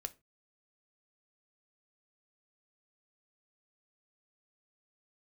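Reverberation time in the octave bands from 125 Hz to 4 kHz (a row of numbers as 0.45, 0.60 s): 0.40, 0.30, 0.30, 0.25, 0.25, 0.20 s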